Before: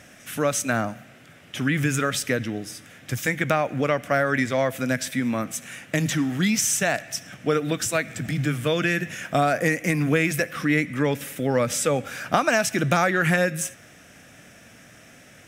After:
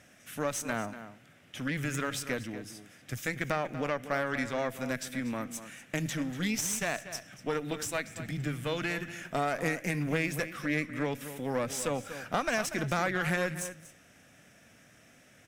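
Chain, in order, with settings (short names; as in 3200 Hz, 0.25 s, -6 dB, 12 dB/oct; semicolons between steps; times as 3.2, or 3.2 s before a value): tube stage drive 14 dB, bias 0.7; outdoor echo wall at 41 m, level -12 dB; gain -6 dB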